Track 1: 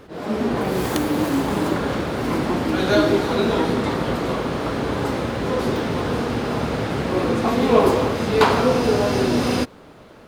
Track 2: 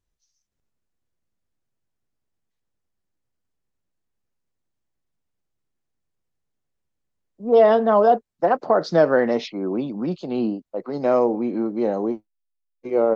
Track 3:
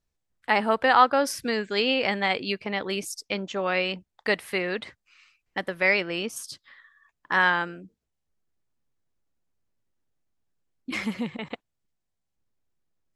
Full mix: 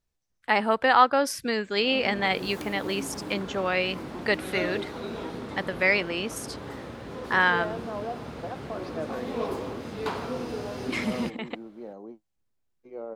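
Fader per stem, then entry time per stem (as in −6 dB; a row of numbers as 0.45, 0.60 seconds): −15.5, −19.0, −0.5 decibels; 1.65, 0.00, 0.00 seconds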